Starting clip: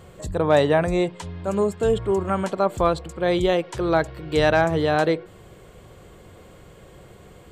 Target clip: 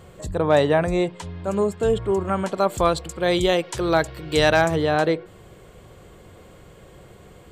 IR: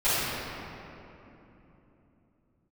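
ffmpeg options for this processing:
-filter_complex "[0:a]asettb=1/sr,asplit=3[s0][s1][s2];[s0]atrim=end=2.544[s3];[s1]atrim=start=2.54:end=4.76,asetpts=PTS-STARTPTS,afade=t=in:d=0.004:c=qsin,afade=t=out:st=2.216:d=0.004:c=qsin,highshelf=f=3000:g=9.5[s4];[s2]atrim=start=4.756[s5];[s3][s4]acrossfade=d=0.004:c1=hsin:c2=qsin[s6];[s6][s5]acrossfade=d=0.004:c1=qsin:c2=hsin"

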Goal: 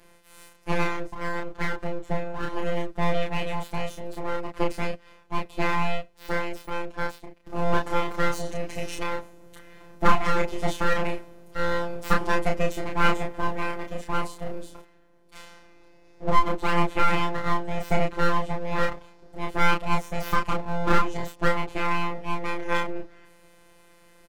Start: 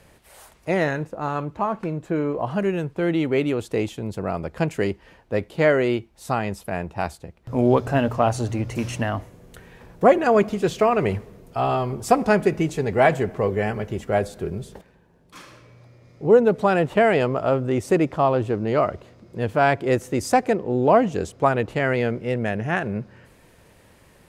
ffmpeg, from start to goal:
-filter_complex "[0:a]afftfilt=real='hypot(re,im)*cos(PI*b)':imag='0':win_size=1024:overlap=0.75,aeval=exprs='abs(val(0))':c=same,asplit=2[s0][s1];[s1]adelay=31,volume=0.708[s2];[s0][s2]amix=inputs=2:normalize=0"

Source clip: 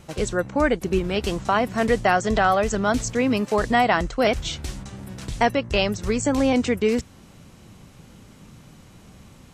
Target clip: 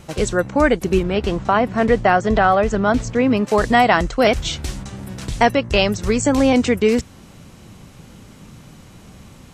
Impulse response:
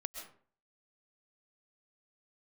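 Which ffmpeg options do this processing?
-filter_complex "[0:a]asettb=1/sr,asplit=3[s0][s1][s2];[s0]atrim=end=1.034[s3];[s1]atrim=start=1.03:end=3.47,asetpts=PTS-STARTPTS,afade=t=in:d=0.004:c=qsin,afade=t=out:st=2.436:d=0.004:c=qsin,aemphasis=mode=reproduction:type=75kf[s4];[s2]atrim=start=3.466[s5];[s3][s4]acrossfade=d=0.004:c1=hsin:c2=qsin[s6];[s6][s5]acrossfade=d=0.004:c1=qsin:c2=hsin,volume=1.78"

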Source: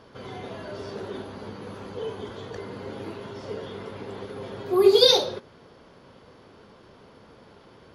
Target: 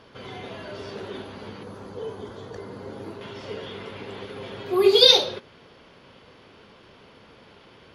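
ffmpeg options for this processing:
-af "asetnsamples=n=441:p=0,asendcmd='1.63 equalizer g -4;3.21 equalizer g 9',equalizer=f=2700:w=1.1:g=6.5,volume=0.891"

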